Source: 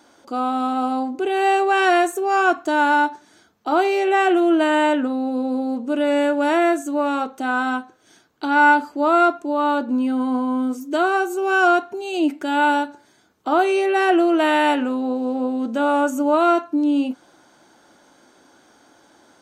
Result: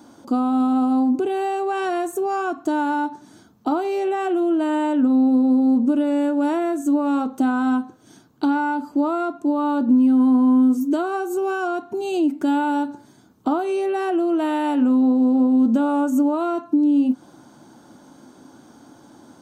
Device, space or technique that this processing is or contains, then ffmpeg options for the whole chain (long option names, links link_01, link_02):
ASMR close-microphone chain: -af "lowshelf=frequency=170:gain=6,acompressor=threshold=-24dB:ratio=6,equalizer=frequency=125:width_type=o:width=1:gain=10,equalizer=frequency=250:width_type=o:width=1:gain=10,equalizer=frequency=1000:width_type=o:width=1:gain=5,equalizer=frequency=2000:width_type=o:width=1:gain=-5,highshelf=frequency=8700:gain=7.5,volume=-1dB"